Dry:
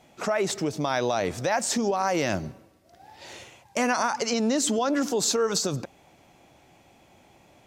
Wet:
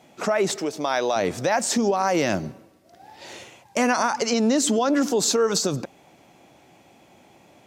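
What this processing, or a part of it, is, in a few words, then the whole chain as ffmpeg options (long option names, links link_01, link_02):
filter by subtraction: -filter_complex "[0:a]asplit=2[link_01][link_02];[link_02]lowpass=220,volume=-1[link_03];[link_01][link_03]amix=inputs=2:normalize=0,asettb=1/sr,asplit=3[link_04][link_05][link_06];[link_04]atrim=end=0.564[link_07];[link_05]atrim=start=0.56:end=1.16,asetpts=PTS-STARTPTS,afade=type=in:duration=0.004:curve=qsin,afade=type=out:start_time=0.596:duration=0.004:curve=qsin,bass=frequency=250:gain=-14,treble=frequency=4000:gain=0[link_08];[link_06]atrim=start=1.156[link_09];[link_07][link_08]acrossfade=duration=0.004:curve1=hsin:curve2=qsin[link_10];[link_10][link_09]acrossfade=duration=0.004:curve1=qsin:curve2=hsin,volume=2.5dB"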